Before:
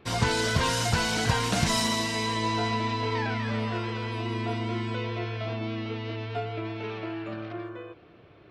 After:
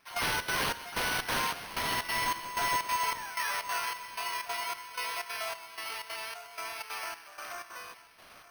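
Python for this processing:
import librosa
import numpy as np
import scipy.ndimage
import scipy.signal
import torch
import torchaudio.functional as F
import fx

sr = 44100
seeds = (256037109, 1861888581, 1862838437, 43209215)

p1 = scipy.ndimage.median_filter(x, 5, mode='constant')
p2 = scipy.signal.sosfilt(scipy.signal.butter(4, 830.0, 'highpass', fs=sr, output='sos'), p1)
p3 = fx.high_shelf(p2, sr, hz=9000.0, db=6.0)
p4 = 10.0 ** (-34.0 / 20.0) * np.tanh(p3 / 10.0 ** (-34.0 / 20.0))
p5 = p3 + F.gain(torch.from_numpy(p4), -10.0).numpy()
p6 = fx.dmg_noise_colour(p5, sr, seeds[0], colour='white', level_db=-52.0)
p7 = (np.mod(10.0 ** (23.5 / 20.0) * p6 + 1.0, 2.0) - 1.0) / 10.0 ** (23.5 / 20.0)
p8 = fx.step_gate(p7, sr, bpm=187, pattern='..xxx.xxx.', floor_db=-12.0, edge_ms=4.5)
p9 = p8 + fx.echo_feedback(p8, sr, ms=930, feedback_pct=51, wet_db=-18.0, dry=0)
p10 = np.repeat(scipy.signal.resample_poly(p9, 1, 6), 6)[:len(p9)]
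y = F.gain(torch.from_numpy(p10), 2.5).numpy()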